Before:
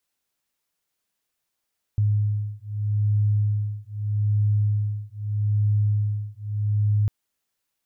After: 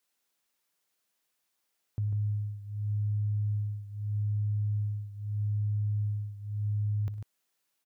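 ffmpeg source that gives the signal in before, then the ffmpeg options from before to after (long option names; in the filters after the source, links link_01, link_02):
-f lavfi -i "aevalsrc='0.0708*(sin(2*PI*104*t)+sin(2*PI*104.8*t))':duration=5.1:sample_rate=44100"
-filter_complex "[0:a]highpass=frequency=200:poles=1,alimiter=level_in=2.5dB:limit=-24dB:level=0:latency=1,volume=-2.5dB,asplit=2[link_01][link_02];[link_02]aecho=0:1:60|102|146:0.119|0.119|0.422[link_03];[link_01][link_03]amix=inputs=2:normalize=0"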